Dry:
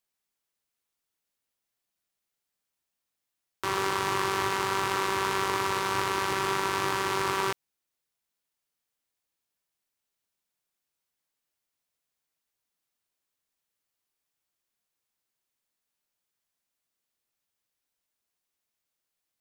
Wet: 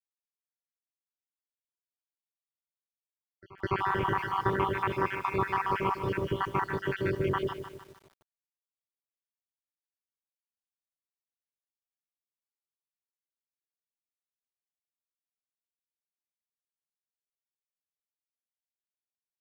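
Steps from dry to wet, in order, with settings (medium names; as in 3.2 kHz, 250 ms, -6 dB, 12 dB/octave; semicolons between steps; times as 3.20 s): random holes in the spectrogram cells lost 70%; distance through air 270 m; bit crusher 12-bit; tone controls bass +7 dB, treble -10 dB; band-stop 3.9 kHz, Q 5.1; pre-echo 207 ms -22 dB; bit-crushed delay 152 ms, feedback 55%, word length 9-bit, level -9.5 dB; trim +3.5 dB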